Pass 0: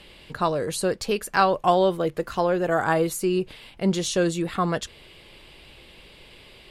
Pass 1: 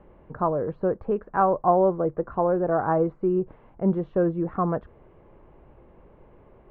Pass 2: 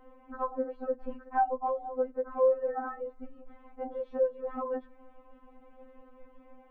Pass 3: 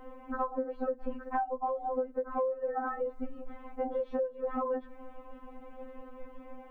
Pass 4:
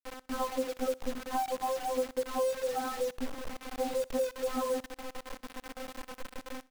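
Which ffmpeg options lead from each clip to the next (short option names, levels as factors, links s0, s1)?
-af "lowpass=f=1200:w=0.5412,lowpass=f=1200:w=1.3066"
-filter_complex "[0:a]acrossover=split=300[s0][s1];[s1]acompressor=threshold=0.0282:ratio=3[s2];[s0][s2]amix=inputs=2:normalize=0,afftfilt=real='re*3.46*eq(mod(b,12),0)':imag='im*3.46*eq(mod(b,12),0)':win_size=2048:overlap=0.75,volume=1.19"
-af "acompressor=threshold=0.0158:ratio=16,volume=2.37"
-filter_complex "[0:a]acrossover=split=190|890[s0][s1][s2];[s2]asoftclip=type=tanh:threshold=0.01[s3];[s0][s1][s3]amix=inputs=3:normalize=0,acrusher=bits=6:mix=0:aa=0.000001,aecho=1:1:62|124|186:0.0708|0.0297|0.0125,volume=1.12"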